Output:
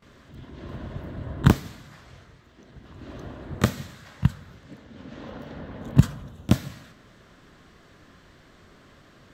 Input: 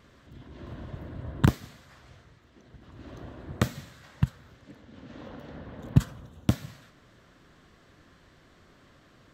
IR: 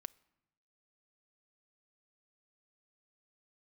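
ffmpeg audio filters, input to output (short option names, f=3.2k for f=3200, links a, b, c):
-filter_complex "[0:a]asplit=2[a][b];[1:a]atrim=start_sample=2205,adelay=22[c];[b][c]afir=irnorm=-1:irlink=0,volume=19.5dB[d];[a][d]amix=inputs=2:normalize=0,volume=-10dB"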